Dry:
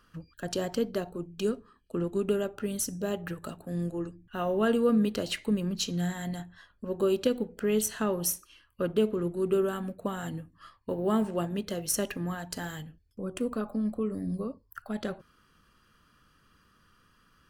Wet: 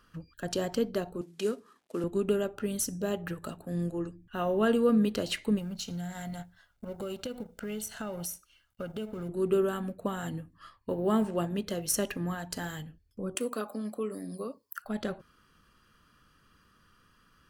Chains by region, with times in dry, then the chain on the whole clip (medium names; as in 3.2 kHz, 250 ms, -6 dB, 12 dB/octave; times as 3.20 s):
1.21–2.04 s: CVSD coder 64 kbps + high-pass 250 Hz
5.58–9.29 s: companding laws mixed up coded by A + comb 1.4 ms, depth 48% + compression 4:1, threshold -34 dBFS
13.35–14.85 s: high-pass 300 Hz + treble shelf 2.9 kHz +10 dB
whole clip: none